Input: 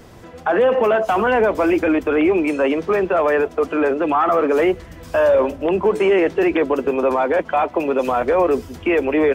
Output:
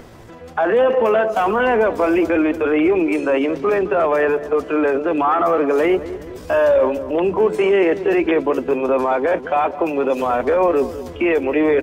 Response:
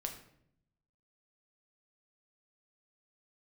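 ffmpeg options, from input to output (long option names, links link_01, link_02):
-filter_complex "[0:a]bandreject=frequency=50:width_type=h:width=6,bandreject=frequency=100:width_type=h:width=6,bandreject=frequency=150:width_type=h:width=6,bandreject=frequency=200:width_type=h:width=6,asplit=2[link_01][link_02];[link_02]adelay=164,lowpass=frequency=1100:poles=1,volume=-12.5dB,asplit=2[link_03][link_04];[link_04]adelay=164,lowpass=frequency=1100:poles=1,volume=0.53,asplit=2[link_05][link_06];[link_06]adelay=164,lowpass=frequency=1100:poles=1,volume=0.53,asplit=2[link_07][link_08];[link_08]adelay=164,lowpass=frequency=1100:poles=1,volume=0.53,asplit=2[link_09][link_10];[link_10]adelay=164,lowpass=frequency=1100:poles=1,volume=0.53[link_11];[link_01][link_03][link_05][link_07][link_09][link_11]amix=inputs=6:normalize=0,acrossover=split=2900[link_12][link_13];[link_12]acompressor=mode=upward:threshold=-36dB:ratio=2.5[link_14];[link_14][link_13]amix=inputs=2:normalize=0,atempo=0.79"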